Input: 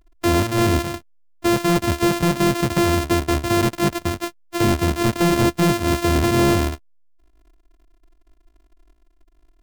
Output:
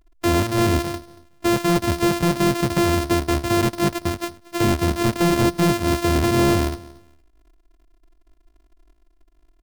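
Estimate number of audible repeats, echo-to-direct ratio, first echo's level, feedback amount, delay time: 2, −21.0 dB, −21.0 dB, 22%, 232 ms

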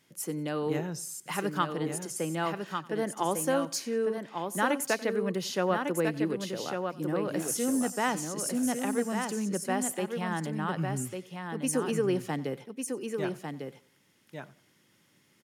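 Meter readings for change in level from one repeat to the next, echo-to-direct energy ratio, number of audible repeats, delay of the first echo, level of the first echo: repeats not evenly spaced, −5.5 dB, 4, 92 ms, −20.5 dB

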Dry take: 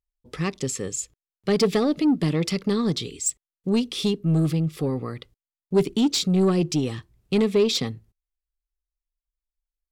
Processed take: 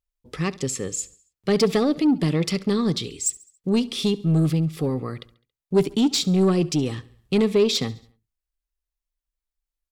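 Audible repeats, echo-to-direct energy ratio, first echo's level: 3, −20.0 dB, −21.0 dB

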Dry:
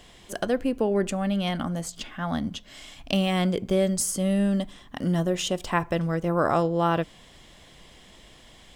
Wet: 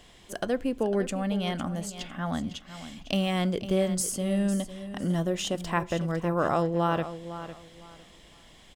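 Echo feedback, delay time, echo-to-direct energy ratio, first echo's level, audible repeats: 24%, 504 ms, −12.0 dB, −12.5 dB, 2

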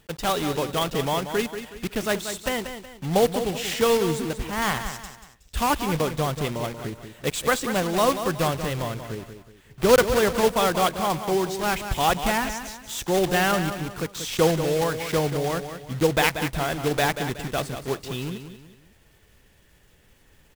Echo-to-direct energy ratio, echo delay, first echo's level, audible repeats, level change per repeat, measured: −9.0 dB, 185 ms, −9.5 dB, 3, −8.5 dB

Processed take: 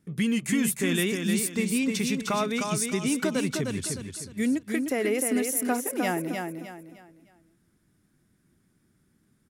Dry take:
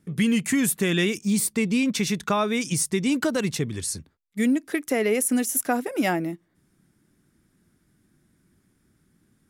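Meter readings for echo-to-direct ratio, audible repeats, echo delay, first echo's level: −4.5 dB, 4, 306 ms, −5.0 dB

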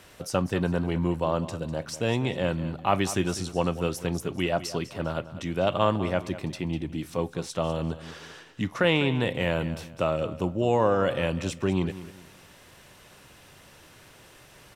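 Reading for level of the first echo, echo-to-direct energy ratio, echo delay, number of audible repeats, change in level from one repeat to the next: −14.5 dB, −14.0 dB, 199 ms, 3, −10.0 dB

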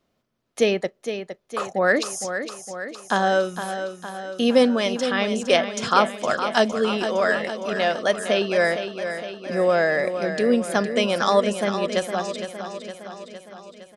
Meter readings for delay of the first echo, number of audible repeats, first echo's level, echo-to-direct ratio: 461 ms, 6, −9.0 dB, −7.0 dB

